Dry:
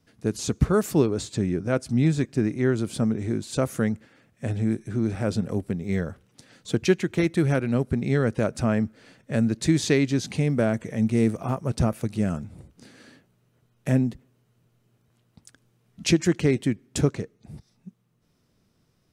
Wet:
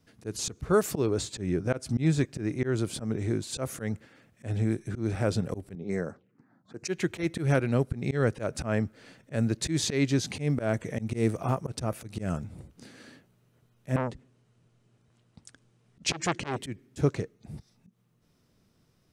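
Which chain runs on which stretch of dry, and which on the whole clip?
5.75–6.88 HPF 190 Hz + low-pass opened by the level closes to 610 Hz, open at -25.5 dBFS + envelope phaser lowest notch 390 Hz, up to 3300 Hz, full sweep at -29.5 dBFS
13.96–16.58 steep low-pass 9800 Hz + core saturation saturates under 1900 Hz
whole clip: dynamic EQ 220 Hz, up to -6 dB, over -36 dBFS, Q 2.8; auto swell 0.122 s

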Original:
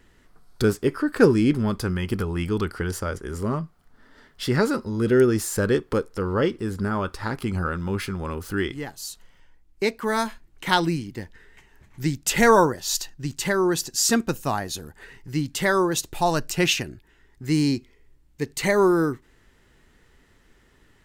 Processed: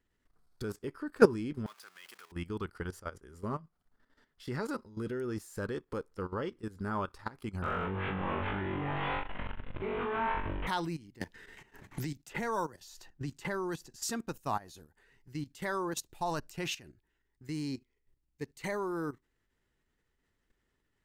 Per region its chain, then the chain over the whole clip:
1.66–2.32 zero-crossing step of -28 dBFS + HPF 1200 Hz
7.62–10.67 delta modulation 16 kbps, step -21.5 dBFS + tilt shelf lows +3 dB, about 1400 Hz + flutter echo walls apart 3.6 m, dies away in 0.7 s
11.21–14.03 expander -47 dBFS + high shelf 2200 Hz -4.5 dB + three-band squash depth 100%
whole clip: level quantiser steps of 13 dB; dynamic EQ 970 Hz, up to +5 dB, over -42 dBFS, Q 1.8; upward expander 1.5:1, over -34 dBFS; gain -2.5 dB

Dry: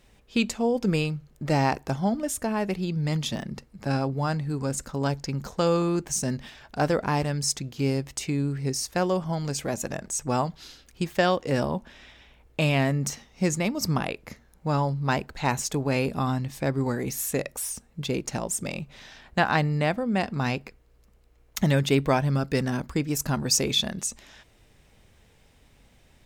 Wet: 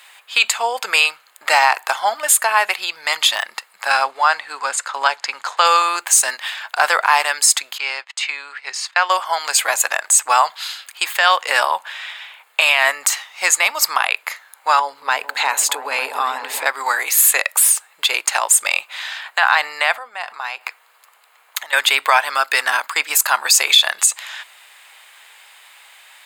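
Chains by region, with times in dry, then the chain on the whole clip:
4.04–5.65 block floating point 7-bit + air absorption 77 m
7.78–9.1 HPF 970 Hz 6 dB/oct + gate -47 dBFS, range -14 dB + air absorption 150 m
14.79–16.66 compressor, threshold -29 dBFS + small resonant body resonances 270/440 Hz, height 12 dB, ringing for 35 ms + repeats that get brighter 0.225 s, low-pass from 200 Hz, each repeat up 1 oct, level -3 dB
19.95–21.73 compressor 10:1, threshold -37 dBFS + bell 870 Hz +4.5 dB 1.5 oct
whole clip: HPF 940 Hz 24 dB/oct; bell 5700 Hz -14.5 dB 0.26 oct; maximiser +21.5 dB; gain -1 dB

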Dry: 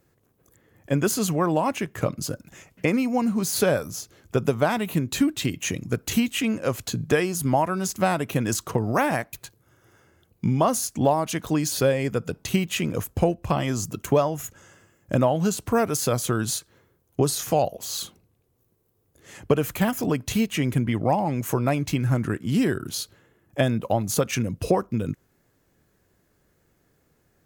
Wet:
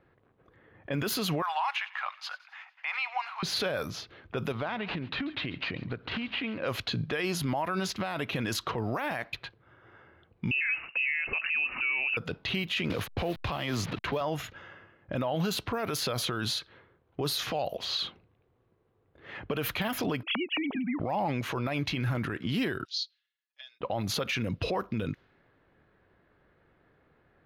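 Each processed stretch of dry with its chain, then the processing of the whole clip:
1.42–3.43 Chebyshev high-pass 790 Hz, order 5 + thin delay 92 ms, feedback 66%, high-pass 2700 Hz, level -16 dB
4.52–6.64 compressor 12:1, threshold -30 dBFS + echo 0.139 s -20 dB + decimation joined by straight lines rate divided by 4×
10.51–12.17 inverted band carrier 2800 Hz + three-band squash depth 40%
12.9–14.21 level-crossing sampler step -39.5 dBFS + three-band squash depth 40%
20.23–21 sine-wave speech + bell 1800 Hz -6.5 dB 0.58 oct + compressor 3:1, threshold -31 dBFS
22.85–23.81 Butterworth band-pass 5500 Hz, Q 2.1 + comb 6.5 ms, depth 62%
whole clip: low-pass opened by the level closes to 1700 Hz, open at -19 dBFS; EQ curve 210 Hz 0 dB, 3900 Hz +12 dB, 7800 Hz -11 dB, 12000 Hz +4 dB; limiter -20.5 dBFS; gain -1.5 dB

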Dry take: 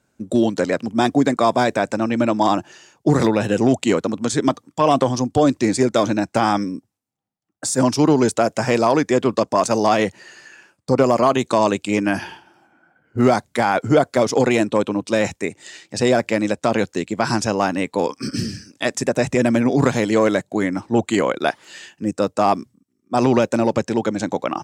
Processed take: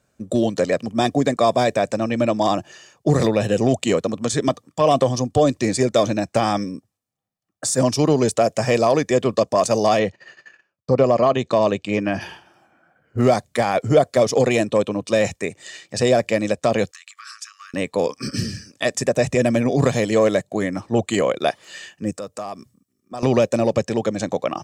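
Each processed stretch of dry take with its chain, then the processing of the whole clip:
9.99–12.21 gate -44 dBFS, range -18 dB + air absorption 130 m
16.91–17.74 compressor 16:1, threshold -28 dBFS + brick-wall FIR high-pass 1100 Hz
22.11–23.23 high shelf 6900 Hz +8 dB + compressor 2.5:1, threshold -34 dBFS
whole clip: dynamic EQ 1300 Hz, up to -6 dB, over -33 dBFS, Q 1.4; comb 1.7 ms, depth 39%

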